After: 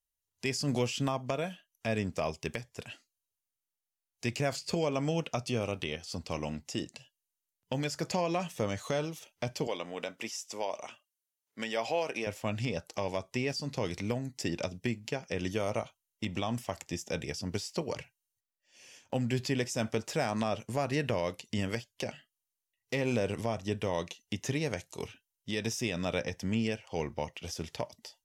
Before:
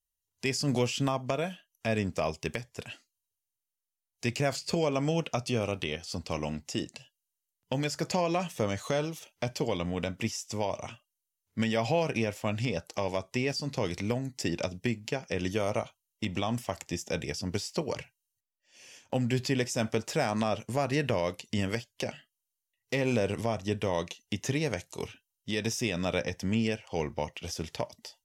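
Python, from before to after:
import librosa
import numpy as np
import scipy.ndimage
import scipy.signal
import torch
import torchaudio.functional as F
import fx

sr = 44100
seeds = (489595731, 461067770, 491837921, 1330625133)

y = fx.highpass(x, sr, hz=370.0, slope=12, at=(9.67, 12.27))
y = F.gain(torch.from_numpy(y), -2.5).numpy()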